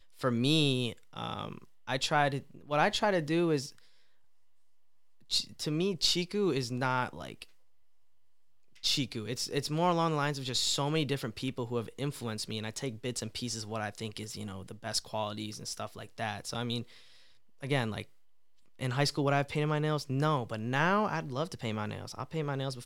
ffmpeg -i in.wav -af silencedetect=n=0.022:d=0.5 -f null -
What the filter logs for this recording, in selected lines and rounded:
silence_start: 3.65
silence_end: 5.32 | silence_duration: 1.66
silence_start: 7.42
silence_end: 8.84 | silence_duration: 1.42
silence_start: 16.81
silence_end: 17.63 | silence_duration: 0.82
silence_start: 18.02
silence_end: 18.81 | silence_duration: 0.79